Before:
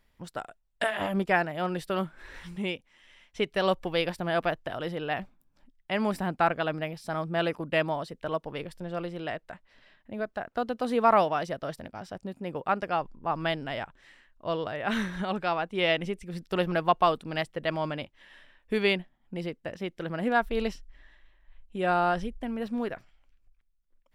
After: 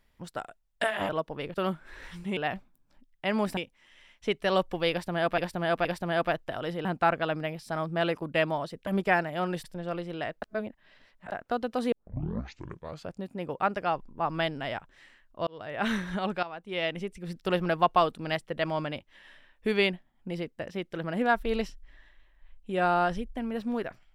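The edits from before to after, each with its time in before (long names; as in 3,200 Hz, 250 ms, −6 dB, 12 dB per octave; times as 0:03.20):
0:01.09–0:01.86: swap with 0:08.25–0:08.70
0:04.03–0:04.50: repeat, 3 plays
0:05.03–0:06.23: move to 0:02.69
0:09.48–0:10.38: reverse
0:10.98: tape start 1.26 s
0:14.53–0:14.87: fade in
0:15.49–0:16.39: fade in, from −14 dB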